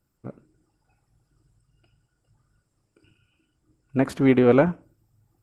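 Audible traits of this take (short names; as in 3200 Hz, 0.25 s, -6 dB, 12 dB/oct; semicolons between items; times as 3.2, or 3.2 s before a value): tremolo saw up 0.63 Hz, depth 35%; Opus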